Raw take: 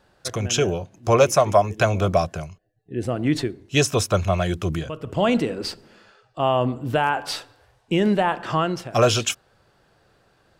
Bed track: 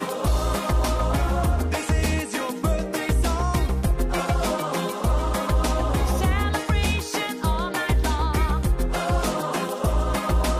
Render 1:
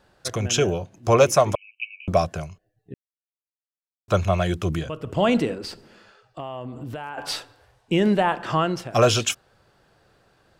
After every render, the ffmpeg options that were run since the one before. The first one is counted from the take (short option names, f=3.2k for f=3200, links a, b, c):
-filter_complex "[0:a]asettb=1/sr,asplit=3[a][b][c];[a]atrim=end=1.554[d];[b]atrim=start=1.55:end=2.08,asetpts=PTS-STARTPTS,afade=t=in:d=0.004:c=qsin,afade=t=out:st=0.526:d=0.004:c=qsin,asuperpass=centerf=2600:order=20:qfactor=3.5[e];[c]atrim=start=2.076[f];[d][e]acrossfade=d=0.004:c1=hsin:c2=qsin[g];[g][f]acrossfade=d=0.004:c1=qsin:c2=hsin,asettb=1/sr,asplit=3[h][i][j];[h]atrim=end=5.544[k];[i]atrim=start=5.54:end=7.18,asetpts=PTS-STARTPTS,afade=t=in:d=0.004:c=qsin,afade=t=out:st=1.636:d=0.004:c=qsin,acompressor=threshold=-30dB:ratio=6:attack=3.2:release=140:knee=1:detection=peak[l];[j]atrim=start=7.176[m];[k][l]acrossfade=d=0.004:c1=hsin:c2=qsin[n];[n][m]acrossfade=d=0.004:c1=qsin:c2=hsin,asplit=3[o][p][q];[o]atrim=end=2.94,asetpts=PTS-STARTPTS,afade=t=out:st=2.936:d=0.004:c=hsin[r];[p]atrim=start=2.94:end=4.08,asetpts=PTS-STARTPTS,volume=0[s];[q]atrim=start=4.08,asetpts=PTS-STARTPTS,afade=t=in:d=0.004:c=hsin[t];[r][s][t]concat=n=3:v=0:a=1"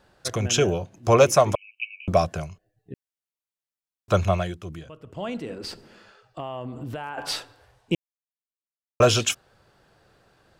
-filter_complex "[0:a]asplit=5[a][b][c][d][e];[a]atrim=end=4.55,asetpts=PTS-STARTPTS,afade=t=out:st=4.29:d=0.26:silence=0.251189[f];[b]atrim=start=4.55:end=5.43,asetpts=PTS-STARTPTS,volume=-12dB[g];[c]atrim=start=5.43:end=7.95,asetpts=PTS-STARTPTS,afade=t=in:d=0.26:silence=0.251189,afade=t=out:st=2.516:d=0.004:c=hsin[h];[d]atrim=start=7.95:end=9,asetpts=PTS-STARTPTS,volume=0[i];[e]atrim=start=9,asetpts=PTS-STARTPTS,afade=t=in:d=0.004:c=hsin[j];[f][g][h][i][j]concat=n=5:v=0:a=1"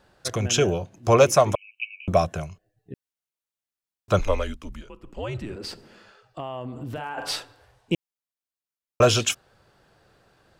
-filter_complex "[0:a]asettb=1/sr,asplit=3[a][b][c];[a]atrim=end=1.494[d];[b]atrim=start=1.49:end=2.48,asetpts=PTS-STARTPTS,afade=t=in:d=0.004:c=qsin,afade=t=out:st=0.986:d=0.004:c=qsin,bandreject=f=4.7k:w=6.1[e];[c]atrim=start=2.476[f];[d][e]acrossfade=d=0.004:c1=hsin:c2=qsin[g];[g][f]acrossfade=d=0.004:c1=qsin:c2=hsin,asettb=1/sr,asplit=3[h][i][j];[h]atrim=end=4.194[k];[i]atrim=start=4.19:end=5.56,asetpts=PTS-STARTPTS,afade=t=in:d=0.004:c=qsin,afade=t=out:st=1.366:d=0.004:c=qsin,afreqshift=-110[l];[j]atrim=start=5.556[m];[k][l]acrossfade=d=0.004:c1=hsin:c2=qsin[n];[n][m]acrossfade=d=0.004:c1=qsin:c2=hsin,asettb=1/sr,asplit=3[o][p][q];[o]atrim=end=6.914[r];[p]atrim=start=6.91:end=7.36,asetpts=PTS-STARTPTS,afade=t=in:d=0.004:c=qsin,afade=t=out:st=0.446:d=0.004:c=qsin,asplit=2[s][t];[t]adelay=46,volume=-8dB[u];[s][u]amix=inputs=2:normalize=0,atrim=end_sample=19845[v];[q]atrim=start=7.356[w];[r][v]acrossfade=d=0.004:c1=hsin:c2=qsin[x];[x][w]acrossfade=d=0.004:c1=qsin:c2=hsin"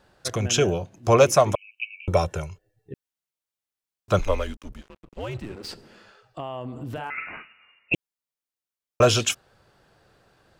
-filter_complex "[0:a]asettb=1/sr,asplit=3[a][b][c];[a]atrim=end=1.944[d];[b]atrim=start=1.94:end=2.93,asetpts=PTS-STARTPTS,afade=t=in:d=0.004:c=qsin,afade=t=out:st=0.986:d=0.004:c=qsin,aecho=1:1:2.2:0.65,atrim=end_sample=43659[e];[c]atrim=start=2.926[f];[d][e]acrossfade=d=0.004:c1=hsin:c2=qsin[g];[g][f]acrossfade=d=0.004:c1=qsin:c2=hsin,asettb=1/sr,asplit=3[h][i][j];[h]atrim=end=4.124[k];[i]atrim=start=4.12:end=5.69,asetpts=PTS-STARTPTS,afade=t=in:d=0.004:c=qsin,afade=t=out:st=1.566:d=0.004:c=qsin,aeval=exprs='sgn(val(0))*max(abs(val(0))-0.00562,0)':c=same[l];[j]atrim=start=5.686[m];[k][l]acrossfade=d=0.004:c1=hsin:c2=qsin[n];[n][m]acrossfade=d=0.004:c1=qsin:c2=hsin,asettb=1/sr,asplit=3[o][p][q];[o]atrim=end=7.104[r];[p]atrim=start=7.1:end=7.94,asetpts=PTS-STARTPTS,afade=t=in:d=0.004:c=qsin,afade=t=out:st=0.836:d=0.004:c=qsin,lowpass=f=2.5k:t=q:w=0.5098,lowpass=f=2.5k:t=q:w=0.6013,lowpass=f=2.5k:t=q:w=0.9,lowpass=f=2.5k:t=q:w=2.563,afreqshift=-2900[s];[q]atrim=start=7.936[t];[r][s]acrossfade=d=0.004:c1=hsin:c2=qsin[u];[u][t]acrossfade=d=0.004:c1=qsin:c2=hsin"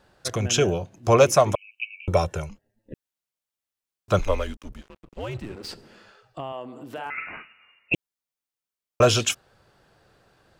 -filter_complex "[0:a]asettb=1/sr,asplit=3[a][b][c];[a]atrim=end=2.494[d];[b]atrim=start=2.49:end=2.93,asetpts=PTS-STARTPTS,afade=t=in:d=0.004:c=qsin,afade=t=out:st=0.436:d=0.004:c=qsin,aeval=exprs='val(0)*sin(2*PI*110*n/s)':c=same[e];[c]atrim=start=2.926[f];[d][e]acrossfade=d=0.004:c1=hsin:c2=qsin[g];[g][f]acrossfade=d=0.004:c1=qsin:c2=hsin,asettb=1/sr,asplit=3[h][i][j];[h]atrim=end=6.524[k];[i]atrim=start=6.52:end=7.06,asetpts=PTS-STARTPTS,afade=t=in:d=0.004:c=qsin,afade=t=out:st=0.536:d=0.004:c=qsin,highpass=290[l];[j]atrim=start=7.056[m];[k][l]acrossfade=d=0.004:c1=hsin:c2=qsin[n];[n][m]acrossfade=d=0.004:c1=qsin:c2=hsin"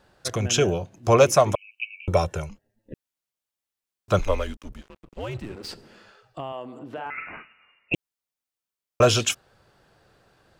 -filter_complex "[0:a]asettb=1/sr,asplit=3[a][b][c];[a]atrim=end=6.794[d];[b]atrim=start=6.79:end=7.94,asetpts=PTS-STARTPTS,afade=t=in:d=0.004:c=qsin,afade=t=out:st=1.146:d=0.004:c=qsin,aemphasis=mode=reproduction:type=75fm[e];[c]atrim=start=7.936[f];[d][e]acrossfade=d=0.004:c1=hsin:c2=qsin[g];[g][f]acrossfade=d=0.004:c1=qsin:c2=hsin"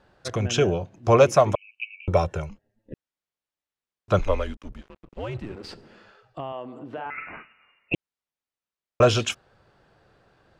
-af "aemphasis=mode=reproduction:type=50fm"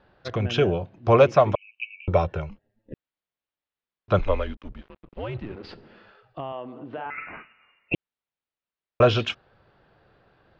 -af "lowpass=f=4.2k:w=0.5412,lowpass=f=4.2k:w=1.3066"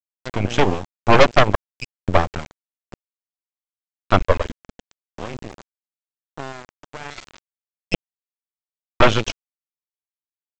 -af "aeval=exprs='0.596*(cos(1*acos(clip(val(0)/0.596,-1,1)))-cos(1*PI/2))+0.299*(cos(6*acos(clip(val(0)/0.596,-1,1)))-cos(6*PI/2))+0.0422*(cos(8*acos(clip(val(0)/0.596,-1,1)))-cos(8*PI/2))':c=same,aresample=16000,aeval=exprs='val(0)*gte(abs(val(0)),0.0299)':c=same,aresample=44100"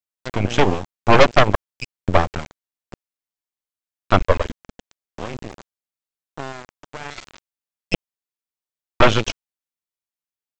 -af "volume=1dB,alimiter=limit=-1dB:level=0:latency=1"